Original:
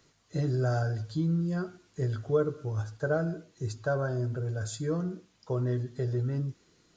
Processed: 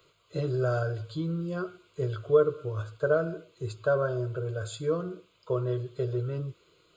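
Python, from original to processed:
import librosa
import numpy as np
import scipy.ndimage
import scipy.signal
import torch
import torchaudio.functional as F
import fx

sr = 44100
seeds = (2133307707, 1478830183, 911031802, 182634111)

y = fx.low_shelf(x, sr, hz=120.0, db=-11.0)
y = fx.fixed_phaser(y, sr, hz=1200.0, stages=8)
y = y * 10.0 ** (6.5 / 20.0)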